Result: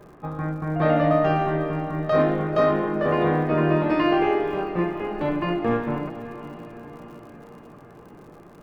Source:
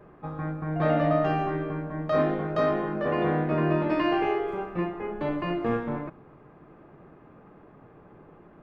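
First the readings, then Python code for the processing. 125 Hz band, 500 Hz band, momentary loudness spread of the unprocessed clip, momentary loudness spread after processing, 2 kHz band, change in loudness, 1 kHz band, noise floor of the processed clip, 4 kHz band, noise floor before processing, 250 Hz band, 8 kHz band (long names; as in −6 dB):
+4.0 dB, +4.5 dB, 9 LU, 18 LU, +4.0 dB, +4.5 dB, +4.5 dB, −47 dBFS, +4.0 dB, −53 dBFS, +4.0 dB, can't be measured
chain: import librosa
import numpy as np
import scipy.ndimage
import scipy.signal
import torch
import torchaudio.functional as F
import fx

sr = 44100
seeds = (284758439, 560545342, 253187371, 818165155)

y = fx.dmg_crackle(x, sr, seeds[0], per_s=90.0, level_db=-48.0)
y = fx.echo_diffused(y, sr, ms=493, feedback_pct=59, wet_db=-13.0)
y = y * librosa.db_to_amplitude(4.0)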